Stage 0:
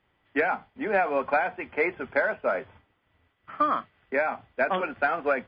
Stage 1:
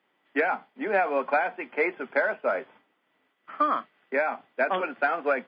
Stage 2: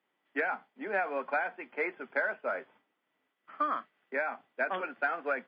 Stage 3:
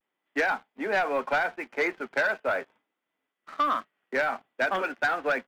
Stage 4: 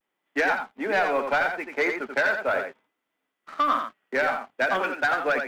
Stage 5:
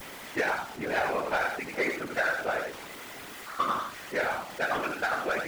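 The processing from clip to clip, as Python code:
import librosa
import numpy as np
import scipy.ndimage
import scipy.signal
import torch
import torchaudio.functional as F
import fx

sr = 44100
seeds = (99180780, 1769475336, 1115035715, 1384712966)

y1 = scipy.signal.sosfilt(scipy.signal.butter(4, 210.0, 'highpass', fs=sr, output='sos'), x)
y2 = fx.dynamic_eq(y1, sr, hz=1600.0, q=2.0, threshold_db=-38.0, ratio=4.0, max_db=5)
y2 = y2 * 10.0 ** (-8.5 / 20.0)
y3 = fx.leveller(y2, sr, passes=2)
y3 = fx.vibrato(y3, sr, rate_hz=0.44, depth_cents=41.0)
y4 = y3 + 10.0 ** (-6.0 / 20.0) * np.pad(y3, (int(86 * sr / 1000.0), 0))[:len(y3)]
y4 = y4 * 10.0 ** (2.0 / 20.0)
y5 = y4 + 0.5 * 10.0 ** (-30.0 / 20.0) * np.sign(y4)
y5 = fx.whisperise(y5, sr, seeds[0])
y5 = y5 * 10.0 ** (-6.5 / 20.0)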